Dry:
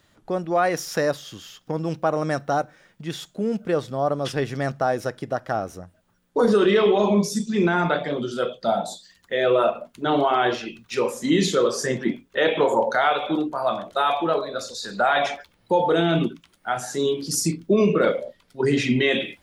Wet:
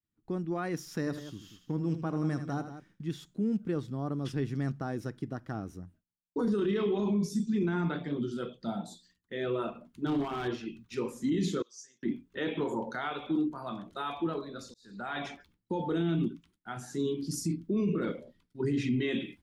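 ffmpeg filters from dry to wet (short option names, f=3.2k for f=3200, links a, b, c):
-filter_complex "[0:a]asettb=1/sr,asplit=3[a][b][c];[a]atrim=end=0.994[d];[b]atrim=start=0.99:end=3.1,asetpts=PTS-STARTPTS,afade=t=in:d=0.004:c=qsin,afade=t=out:st=2.106:d=0.004:c=qsin,aecho=1:1:79|184:0.299|0.251,atrim=end_sample=93051[e];[c]atrim=start=3.096[f];[d][e]acrossfade=d=0.004:c1=hsin:c2=qsin[g];[g][f]acrossfade=d=0.004:c1=qsin:c2=hsin,asettb=1/sr,asplit=3[h][i][j];[h]atrim=end=10.064[k];[i]atrim=start=10.06:end=10.48,asetpts=PTS-STARTPTS,afade=t=in:d=0.004:c=qsin,afade=t=out:st=0.416:d=0.004:c=qsin,asoftclip=type=hard:threshold=-16dB[l];[j]atrim=start=10.476[m];[k][l]acrossfade=d=0.004:c1=hsin:c2=qsin[n];[n][m]acrossfade=d=0.004:c1=qsin:c2=hsin,asettb=1/sr,asplit=3[o][p][q];[o]atrim=end=11.624[r];[p]atrim=start=11.62:end=12.03,asetpts=PTS-STARTPTS,afade=t=in:d=0.004:c=qsin,afade=t=out:st=0.406:d=0.004:c=qsin,bandpass=f=6.2k:t=q:w=5.2[s];[q]atrim=start=12.026[t];[r][s]acrossfade=d=0.004:c1=hsin:c2=qsin[u];[u][t]acrossfade=d=0.004:c1=qsin:c2=hsin,asplit=2[v][w];[v]atrim=end=14.74,asetpts=PTS-STARTPTS,afade=t=out:st=14.736:d=0.004:c=hsin[x];[w]atrim=start=14.74,asetpts=PTS-STARTPTS,afade=t=in:d=0.45[y];[x][y]concat=n=2:v=0:a=1,agate=range=-33dB:threshold=-47dB:ratio=3:detection=peak,firequalizer=gain_entry='entry(310,0);entry(570,-18);entry(960,-11)':delay=0.05:min_phase=1,alimiter=limit=-19.5dB:level=0:latency=1:release=16,volume=-3dB"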